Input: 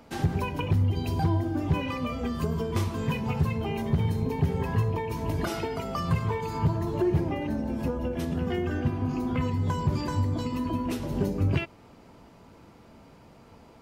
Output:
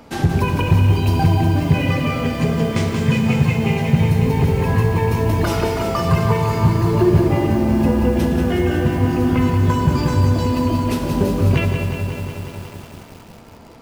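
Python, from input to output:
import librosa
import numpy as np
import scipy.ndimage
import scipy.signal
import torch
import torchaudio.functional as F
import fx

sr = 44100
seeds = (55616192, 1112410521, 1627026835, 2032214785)

y = fx.cabinet(x, sr, low_hz=110.0, low_slope=12, high_hz=9000.0, hz=(130.0, 350.0, 1000.0, 2100.0), db=(7, -5, -8, 5), at=(1.24, 4.02))
y = fx.rev_schroeder(y, sr, rt60_s=2.5, comb_ms=32, drr_db=6.5)
y = fx.echo_crushed(y, sr, ms=182, feedback_pct=80, bits=8, wet_db=-7)
y = F.gain(torch.from_numpy(y), 8.5).numpy()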